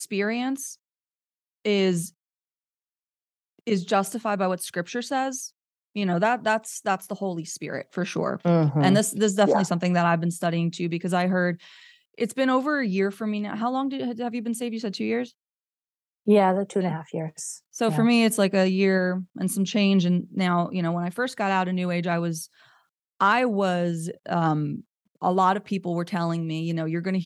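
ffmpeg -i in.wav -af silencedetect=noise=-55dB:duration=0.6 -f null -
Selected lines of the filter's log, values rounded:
silence_start: 0.75
silence_end: 1.65 | silence_duration: 0.90
silence_start: 2.11
silence_end: 3.59 | silence_duration: 1.48
silence_start: 15.32
silence_end: 16.26 | silence_duration: 0.95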